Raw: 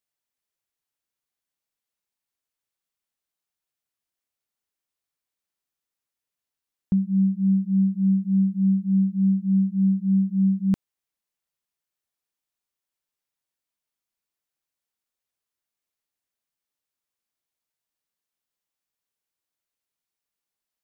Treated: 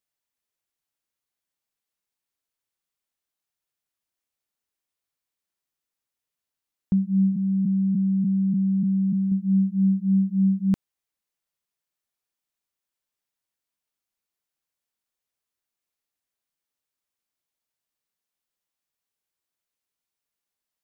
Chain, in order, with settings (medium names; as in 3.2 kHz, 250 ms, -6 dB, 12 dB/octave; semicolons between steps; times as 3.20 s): 7.32–9.32 s: spectral blur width 345 ms